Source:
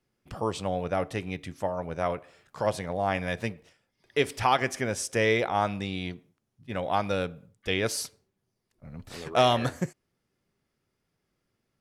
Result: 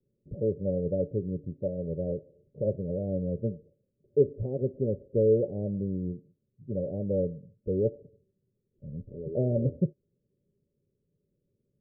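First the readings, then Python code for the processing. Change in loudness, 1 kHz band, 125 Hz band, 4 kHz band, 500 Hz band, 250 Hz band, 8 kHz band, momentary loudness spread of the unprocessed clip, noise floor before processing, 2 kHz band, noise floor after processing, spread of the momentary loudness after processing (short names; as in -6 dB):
-1.5 dB, under -30 dB, +3.5 dB, under -40 dB, +1.0 dB, +2.0 dB, under -40 dB, 14 LU, -80 dBFS, under -40 dB, -80 dBFS, 13 LU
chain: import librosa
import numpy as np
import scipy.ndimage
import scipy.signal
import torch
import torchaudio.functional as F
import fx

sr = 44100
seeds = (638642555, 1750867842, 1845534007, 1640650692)

y = scipy.signal.sosfilt(scipy.signal.cheby1(6, 6, 590.0, 'lowpass', fs=sr, output='sos'), x)
y = y * 10.0 ** (5.0 / 20.0)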